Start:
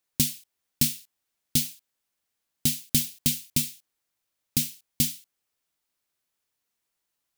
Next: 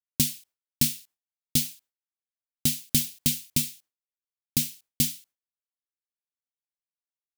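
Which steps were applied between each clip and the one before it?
expander -49 dBFS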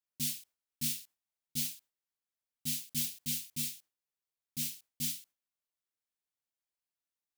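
auto swell 0.107 s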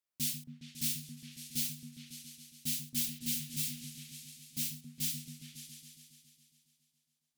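repeats that get brighter 0.138 s, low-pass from 200 Hz, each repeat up 2 oct, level -3 dB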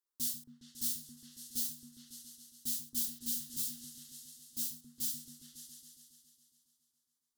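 fixed phaser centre 640 Hz, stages 6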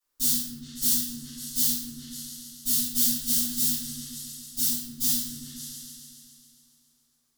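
shoebox room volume 260 m³, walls mixed, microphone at 6.2 m

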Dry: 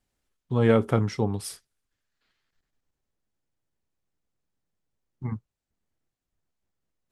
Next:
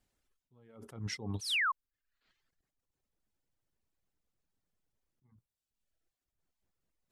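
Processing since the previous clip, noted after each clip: reverb removal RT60 0.82 s; painted sound fall, 1.41–1.72, 1000–6500 Hz -30 dBFS; attack slew limiter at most 120 dB/s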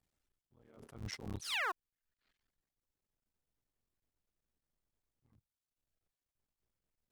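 cycle switcher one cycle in 3, muted; gain -3.5 dB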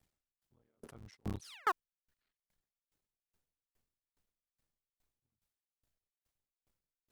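dB-ramp tremolo decaying 2.4 Hz, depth 37 dB; gain +9 dB

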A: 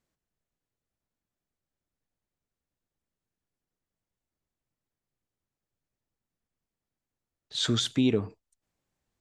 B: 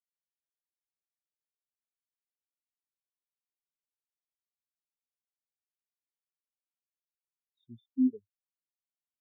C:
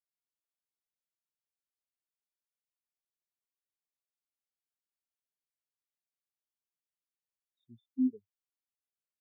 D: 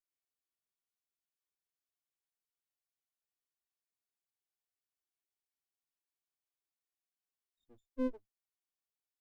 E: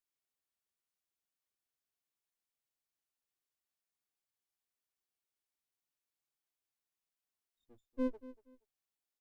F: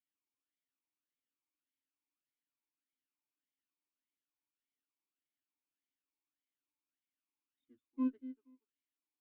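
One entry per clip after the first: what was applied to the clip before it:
spectral expander 4:1; gain -5.5 dB
dynamic EQ 160 Hz, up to +5 dB, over -38 dBFS, Q 0.81; gain -6 dB
minimum comb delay 2.7 ms; gain -2.5 dB
feedback echo 0.237 s, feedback 24%, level -17 dB
vowel sweep i-u 1.7 Hz; gain +9 dB

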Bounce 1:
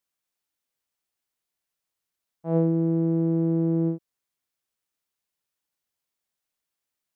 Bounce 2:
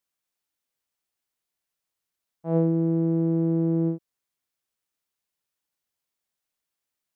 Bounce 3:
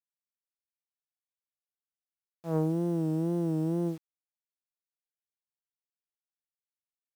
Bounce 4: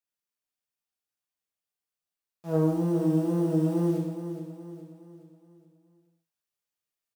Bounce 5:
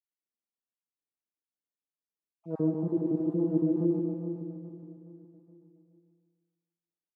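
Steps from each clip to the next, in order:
nothing audible
self-modulated delay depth 0.16 ms; bit-crush 8-bit; wow and flutter 82 cents; gain -6 dB
vocal rider; feedback echo 0.418 s, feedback 44%, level -10 dB; non-linear reverb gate 0.26 s falling, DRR -3.5 dB
random spectral dropouts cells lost 36%; band-pass 290 Hz, Q 1.4; feedback echo 0.147 s, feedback 52%, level -6 dB

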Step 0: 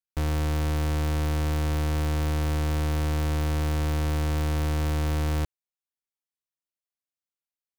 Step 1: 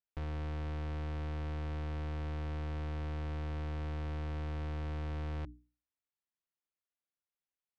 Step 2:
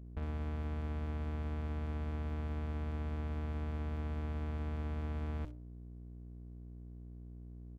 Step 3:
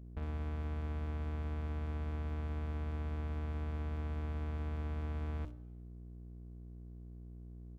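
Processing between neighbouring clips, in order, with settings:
LPF 3100 Hz 12 dB/oct; notches 60/120/180/240/300 Hz; limiter -32.5 dBFS, peak gain reduction 10.5 dB; gain -2 dB
hum 60 Hz, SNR 10 dB; bands offset in time lows, highs 60 ms, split 2900 Hz; running maximum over 33 samples
plate-style reverb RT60 1.3 s, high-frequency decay 0.9×, DRR 18.5 dB; gain -1 dB

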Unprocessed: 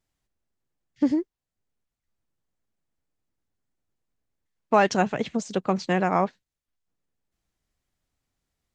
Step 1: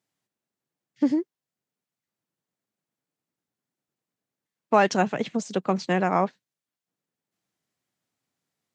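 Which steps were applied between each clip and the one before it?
HPF 130 Hz 24 dB/oct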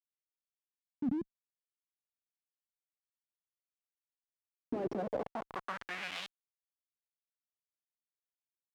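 Schmitt trigger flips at -28.5 dBFS; band-pass sweep 210 Hz -> 5400 Hz, 4.55–6.54; gain +4 dB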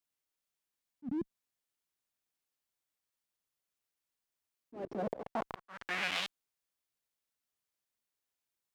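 auto swell 0.307 s; gain +6.5 dB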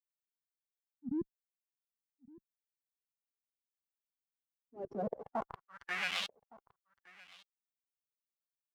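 per-bin expansion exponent 1.5; echo 1.164 s -22 dB; gain +1 dB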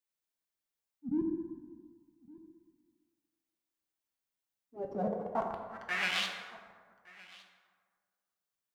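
plate-style reverb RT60 1.7 s, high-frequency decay 0.45×, DRR 2.5 dB; gain +2.5 dB

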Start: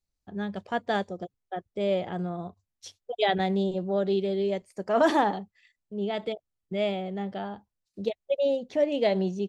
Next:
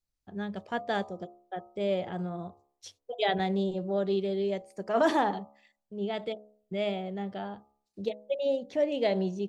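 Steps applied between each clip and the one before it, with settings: de-hum 70.54 Hz, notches 18; gain -2.5 dB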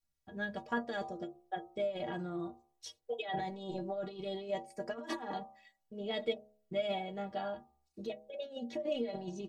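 negative-ratio compressor -31 dBFS, ratio -0.5; metallic resonator 70 Hz, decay 0.37 s, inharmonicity 0.03; gain +6 dB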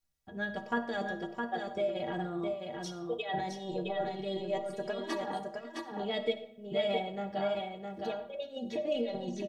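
echo 0.663 s -4.5 dB; on a send at -11.5 dB: reverb RT60 0.70 s, pre-delay 25 ms; on the sum: gain +2.5 dB

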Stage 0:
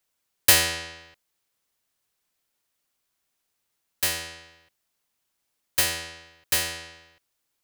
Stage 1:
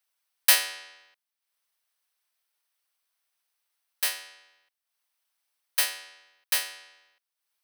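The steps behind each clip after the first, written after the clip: HPF 740 Hz 12 dB/oct; notch 7000 Hz, Q 5.3; transient shaper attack 0 dB, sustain -8 dB; gain -1.5 dB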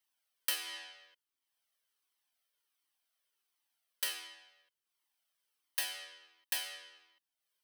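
compressor 8:1, threshold -27 dBFS, peak gain reduction 13.5 dB; small resonant body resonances 300/3100 Hz, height 9 dB, ringing for 20 ms; cascading flanger falling 1.4 Hz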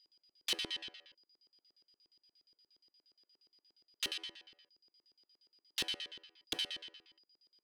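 whine 4900 Hz -69 dBFS; wrapped overs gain 27 dB; LFO band-pass square 8.5 Hz 350–3500 Hz; gain +9.5 dB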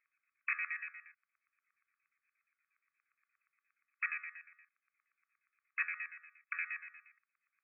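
brick-wall FIR band-pass 1100–2600 Hz; gain +12 dB

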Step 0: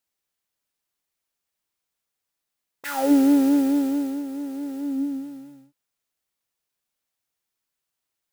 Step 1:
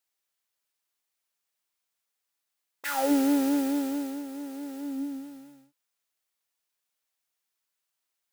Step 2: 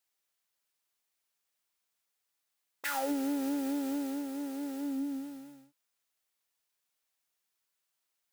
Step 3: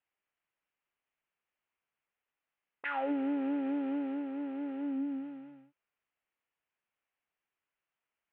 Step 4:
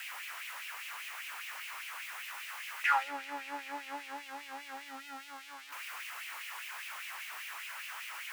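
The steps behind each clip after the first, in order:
low shelf 370 Hz -11 dB
compressor 5:1, threshold -31 dBFS, peak gain reduction 10 dB
steep low-pass 2900 Hz 48 dB/oct
zero-crossing step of -40.5 dBFS; LFO high-pass sine 5 Hz 950–2600 Hz; gain +2.5 dB

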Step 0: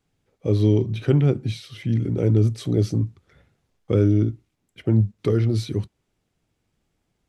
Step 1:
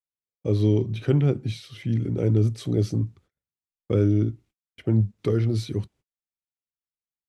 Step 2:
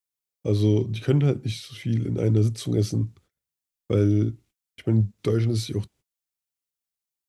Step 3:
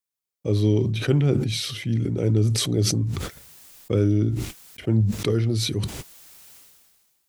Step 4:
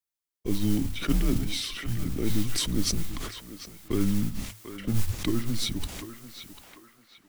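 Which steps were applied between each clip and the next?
gate -48 dBFS, range -37 dB; gain -2.5 dB
high shelf 3900 Hz +8.5 dB
sustainer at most 33 dB/s
narrowing echo 0.744 s, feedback 52%, band-pass 1400 Hz, level -7 dB; frequency shift -110 Hz; modulation noise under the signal 19 dB; gain -3.5 dB

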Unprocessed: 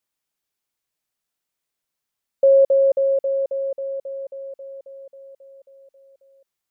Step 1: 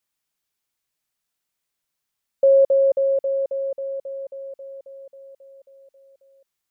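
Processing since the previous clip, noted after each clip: bell 470 Hz -3 dB 2.1 oct; gain +2 dB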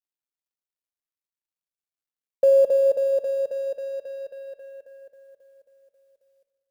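G.711 law mismatch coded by A; shoebox room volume 1700 m³, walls mixed, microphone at 0.56 m

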